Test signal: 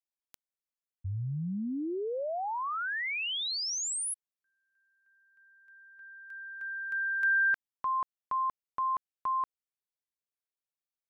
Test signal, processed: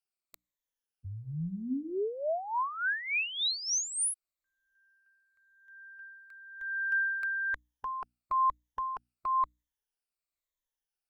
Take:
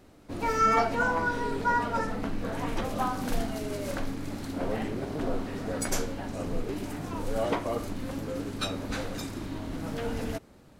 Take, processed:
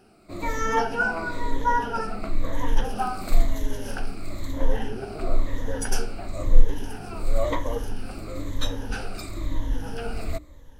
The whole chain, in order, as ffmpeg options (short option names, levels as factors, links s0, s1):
-af "afftfilt=real='re*pow(10,13/40*sin(2*PI*(1.1*log(max(b,1)*sr/1024/100)/log(2)-(-1)*(pts-256)/sr)))':imag='im*pow(10,13/40*sin(2*PI*(1.1*log(max(b,1)*sr/1024/100)/log(2)-(-1)*(pts-256)/sr)))':win_size=1024:overlap=0.75,bandreject=f=60:t=h:w=6,bandreject=f=120:t=h:w=6,bandreject=f=180:t=h:w=6,bandreject=f=240:t=h:w=6,bandreject=f=300:t=h:w=6,asubboost=boost=7.5:cutoff=57,volume=0.891"